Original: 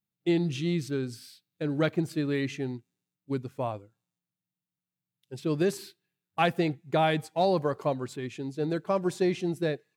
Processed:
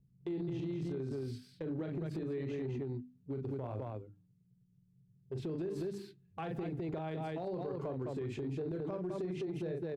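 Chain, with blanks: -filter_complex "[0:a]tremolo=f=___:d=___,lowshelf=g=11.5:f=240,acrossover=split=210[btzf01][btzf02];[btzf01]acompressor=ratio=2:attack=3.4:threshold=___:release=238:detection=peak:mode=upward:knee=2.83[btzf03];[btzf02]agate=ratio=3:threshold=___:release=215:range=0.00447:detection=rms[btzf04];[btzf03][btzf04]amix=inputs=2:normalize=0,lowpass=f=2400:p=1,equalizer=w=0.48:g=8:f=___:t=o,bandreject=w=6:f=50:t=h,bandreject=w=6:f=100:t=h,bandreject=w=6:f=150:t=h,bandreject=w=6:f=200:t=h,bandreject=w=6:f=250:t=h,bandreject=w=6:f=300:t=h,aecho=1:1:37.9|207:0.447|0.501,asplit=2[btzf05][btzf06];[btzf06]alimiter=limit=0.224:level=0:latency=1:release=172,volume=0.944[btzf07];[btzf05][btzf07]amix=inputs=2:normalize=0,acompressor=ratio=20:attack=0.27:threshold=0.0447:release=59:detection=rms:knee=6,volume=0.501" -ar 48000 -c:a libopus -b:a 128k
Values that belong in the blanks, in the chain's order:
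42, 0.182, 0.00708, 0.00224, 410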